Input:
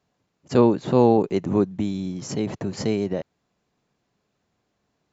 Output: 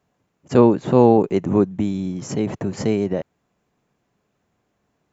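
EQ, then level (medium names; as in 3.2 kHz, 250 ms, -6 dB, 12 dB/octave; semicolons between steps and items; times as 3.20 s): peaking EQ 4.4 kHz -7 dB 0.89 oct; +3.5 dB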